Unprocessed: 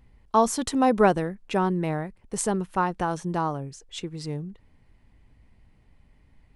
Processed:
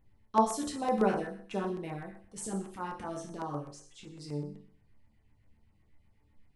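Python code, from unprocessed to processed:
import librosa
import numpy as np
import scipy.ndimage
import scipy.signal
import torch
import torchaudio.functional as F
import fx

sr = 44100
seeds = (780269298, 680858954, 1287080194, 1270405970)

y = fx.transient(x, sr, attack_db=-11, sustain_db=3, at=(1.94, 4.18))
y = fx.resonator_bank(y, sr, root=38, chord='sus4', decay_s=0.56)
y = fx.filter_lfo_notch(y, sr, shape='saw_down', hz=7.9, low_hz=380.0, high_hz=5300.0, q=1.1)
y = y * 10.0 ** (7.0 / 20.0)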